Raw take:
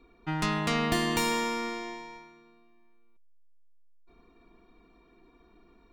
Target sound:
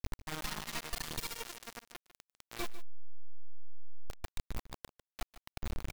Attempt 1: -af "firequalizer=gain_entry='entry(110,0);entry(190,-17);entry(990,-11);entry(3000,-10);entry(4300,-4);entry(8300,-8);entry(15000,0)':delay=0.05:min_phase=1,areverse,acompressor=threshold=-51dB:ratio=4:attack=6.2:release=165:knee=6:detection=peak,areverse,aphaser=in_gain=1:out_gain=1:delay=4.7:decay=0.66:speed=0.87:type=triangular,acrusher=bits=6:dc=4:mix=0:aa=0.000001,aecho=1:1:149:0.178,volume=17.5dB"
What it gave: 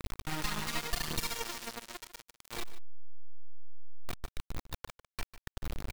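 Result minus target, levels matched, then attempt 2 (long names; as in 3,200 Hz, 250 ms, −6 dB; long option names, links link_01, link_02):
downward compressor: peak gain reduction −6 dB
-af "firequalizer=gain_entry='entry(110,0);entry(190,-17);entry(990,-11);entry(3000,-10);entry(4300,-4);entry(8300,-8);entry(15000,0)':delay=0.05:min_phase=1,areverse,acompressor=threshold=-59dB:ratio=4:attack=6.2:release=165:knee=6:detection=peak,areverse,aphaser=in_gain=1:out_gain=1:delay=4.7:decay=0.66:speed=0.87:type=triangular,acrusher=bits=6:dc=4:mix=0:aa=0.000001,aecho=1:1:149:0.178,volume=17.5dB"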